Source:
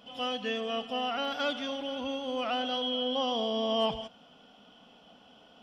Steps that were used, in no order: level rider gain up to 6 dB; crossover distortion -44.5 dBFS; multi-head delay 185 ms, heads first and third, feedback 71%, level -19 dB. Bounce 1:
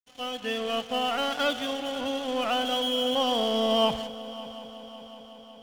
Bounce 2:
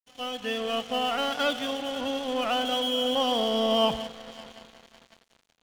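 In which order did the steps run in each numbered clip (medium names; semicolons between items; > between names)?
crossover distortion > level rider > multi-head delay; multi-head delay > crossover distortion > level rider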